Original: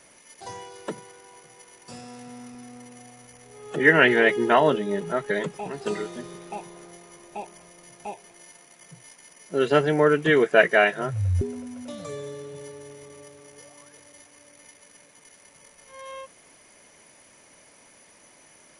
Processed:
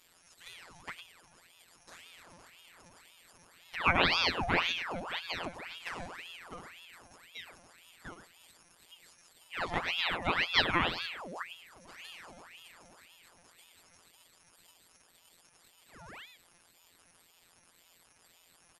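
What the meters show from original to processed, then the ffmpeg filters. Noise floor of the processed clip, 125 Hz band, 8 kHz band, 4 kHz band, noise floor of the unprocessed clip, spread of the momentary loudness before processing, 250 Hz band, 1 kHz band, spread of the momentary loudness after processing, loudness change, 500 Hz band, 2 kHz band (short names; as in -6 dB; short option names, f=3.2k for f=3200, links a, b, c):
-65 dBFS, -14.0 dB, -10.0 dB, +2.0 dB, -55 dBFS, 22 LU, -14.5 dB, -7.5 dB, 23 LU, -10.0 dB, -19.5 dB, -9.5 dB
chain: -filter_complex "[0:a]afftfilt=real='hypot(re,im)*cos(PI*b)':imag='0':win_size=1024:overlap=0.75,asplit=2[a][b];[b]adelay=105,volume=-9dB,highshelf=f=4k:g=-2.36[c];[a][c]amix=inputs=2:normalize=0,aeval=exprs='val(0)*sin(2*PI*1700*n/s+1700*0.8/1.9*sin(2*PI*1.9*n/s))':c=same,volume=-4.5dB"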